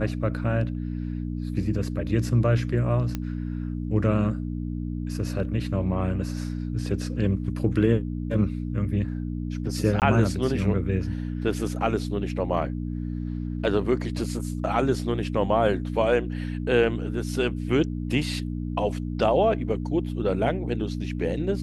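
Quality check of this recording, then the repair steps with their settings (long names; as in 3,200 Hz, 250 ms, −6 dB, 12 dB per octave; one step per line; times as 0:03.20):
mains hum 60 Hz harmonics 5 −30 dBFS
0:03.15: click −15 dBFS
0:10.00–0:10.02: drop-out 18 ms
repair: click removal
hum removal 60 Hz, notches 5
repair the gap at 0:10.00, 18 ms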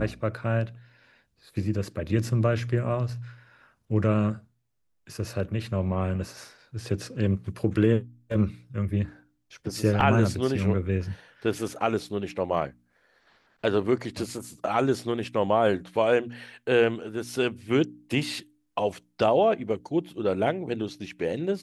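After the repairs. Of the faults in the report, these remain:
none of them is left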